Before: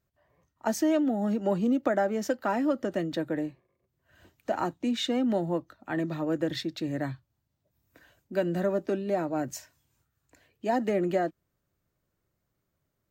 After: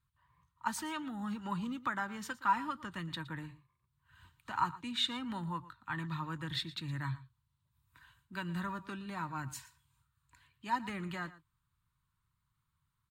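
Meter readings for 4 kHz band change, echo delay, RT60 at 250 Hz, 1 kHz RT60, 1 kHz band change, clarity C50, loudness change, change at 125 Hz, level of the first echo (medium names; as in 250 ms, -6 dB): 0.0 dB, 116 ms, no reverb, no reverb, -2.5 dB, no reverb, -9.0 dB, -4.0 dB, -17.5 dB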